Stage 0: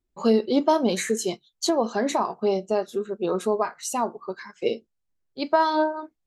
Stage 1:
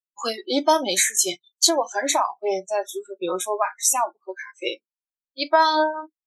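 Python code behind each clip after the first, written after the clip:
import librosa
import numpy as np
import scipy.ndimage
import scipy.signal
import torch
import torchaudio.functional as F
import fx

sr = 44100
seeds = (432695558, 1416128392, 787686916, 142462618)

y = fx.tilt_eq(x, sr, slope=3.0)
y = fx.noise_reduce_blind(y, sr, reduce_db=29)
y = fx.peak_eq(y, sr, hz=77.0, db=-12.5, octaves=1.3)
y = y * 10.0 ** (4.0 / 20.0)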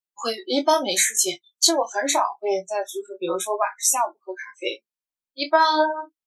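y = fx.chorus_voices(x, sr, voices=2, hz=0.78, base_ms=21, depth_ms=3.6, mix_pct=30)
y = y * 10.0 ** (2.5 / 20.0)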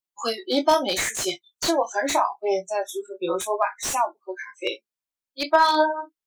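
y = fx.slew_limit(x, sr, full_power_hz=320.0)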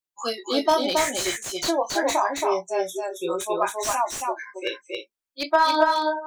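y = x + 10.0 ** (-3.5 / 20.0) * np.pad(x, (int(274 * sr / 1000.0), 0))[:len(x)]
y = y * 10.0 ** (-1.5 / 20.0)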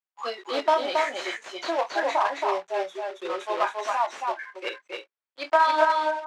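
y = fx.block_float(x, sr, bits=3)
y = fx.bandpass_edges(y, sr, low_hz=530.0, high_hz=2600.0)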